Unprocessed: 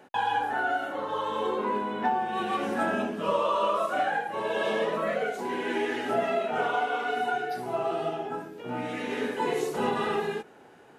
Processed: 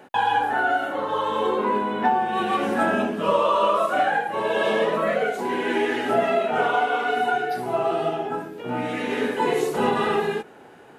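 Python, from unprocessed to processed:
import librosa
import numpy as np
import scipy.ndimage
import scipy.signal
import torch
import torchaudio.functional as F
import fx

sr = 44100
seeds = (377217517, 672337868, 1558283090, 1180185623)

y = fx.peak_eq(x, sr, hz=5800.0, db=-3.0, octaves=0.78)
y = F.gain(torch.from_numpy(y), 6.0).numpy()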